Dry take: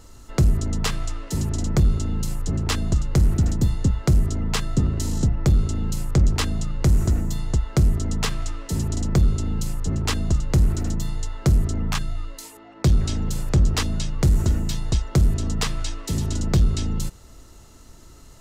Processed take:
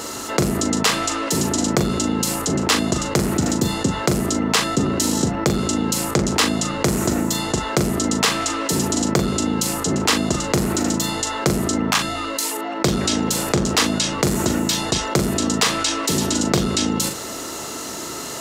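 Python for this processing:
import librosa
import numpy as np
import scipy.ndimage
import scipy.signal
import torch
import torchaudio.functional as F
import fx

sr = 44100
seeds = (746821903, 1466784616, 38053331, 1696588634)

y = scipy.signal.sosfilt(scipy.signal.butter(2, 290.0, 'highpass', fs=sr, output='sos'), x)
y = fx.doubler(y, sr, ms=40.0, db=-10.0)
y = fx.env_flatten(y, sr, amount_pct=50)
y = F.gain(torch.from_numpy(y), 7.5).numpy()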